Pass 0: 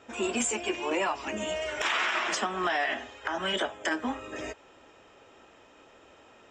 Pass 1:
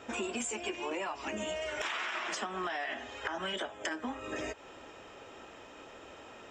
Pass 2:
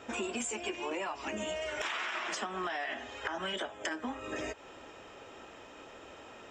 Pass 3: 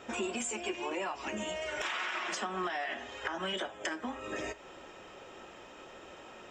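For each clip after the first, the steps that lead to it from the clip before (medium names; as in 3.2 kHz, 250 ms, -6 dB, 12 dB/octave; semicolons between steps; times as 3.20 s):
compression 5:1, threshold -40 dBFS, peak gain reduction 14 dB; trim +5 dB
no audible change
reverberation, pre-delay 5 ms, DRR 11 dB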